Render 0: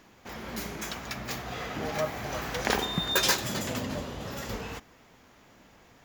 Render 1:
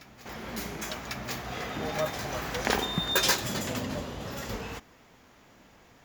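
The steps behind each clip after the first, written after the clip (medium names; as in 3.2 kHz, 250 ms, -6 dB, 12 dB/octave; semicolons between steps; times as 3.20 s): reverse echo 1098 ms -17 dB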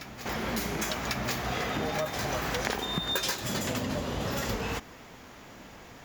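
compression 8:1, threshold -36 dBFS, peak gain reduction 16.5 dB; trim +8.5 dB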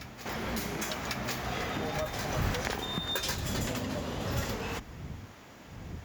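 wind noise 110 Hz -36 dBFS; high-pass 48 Hz; trim -3 dB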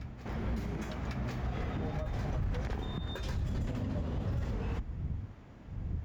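RIAA curve playback; peak limiter -19 dBFS, peak gain reduction 11.5 dB; trim -7.5 dB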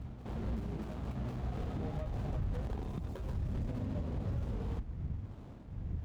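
median filter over 25 samples; reverse; upward compressor, threshold -38 dBFS; reverse; trim -2 dB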